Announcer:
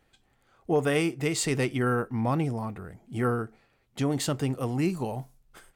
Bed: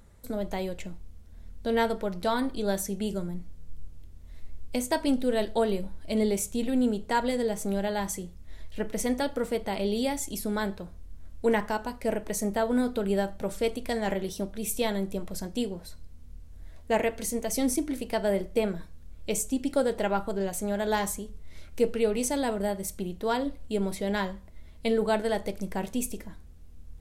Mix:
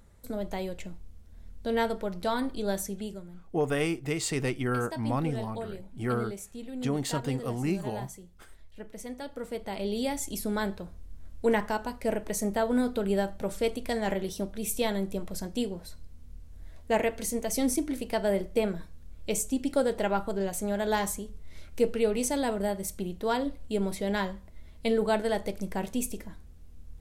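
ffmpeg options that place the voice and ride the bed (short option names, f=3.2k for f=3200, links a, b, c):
-filter_complex "[0:a]adelay=2850,volume=-3dB[a];[1:a]volume=9.5dB,afade=t=out:st=2.83:d=0.4:silence=0.316228,afade=t=in:st=9.17:d=1.14:silence=0.266073[b];[a][b]amix=inputs=2:normalize=0"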